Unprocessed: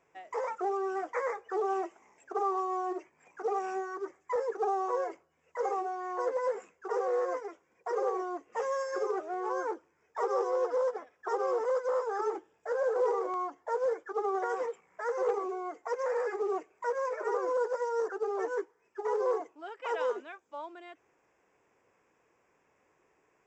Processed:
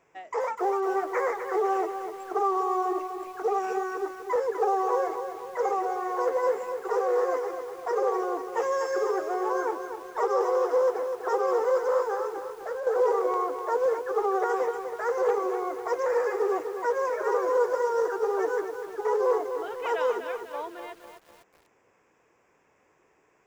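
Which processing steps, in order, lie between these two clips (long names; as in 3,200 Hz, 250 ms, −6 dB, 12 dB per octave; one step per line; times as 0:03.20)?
0:12.14–0:12.87: downward compressor 6 to 1, threshold −37 dBFS, peak gain reduction 10 dB
feedback echo at a low word length 249 ms, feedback 55%, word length 9 bits, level −8 dB
level +5 dB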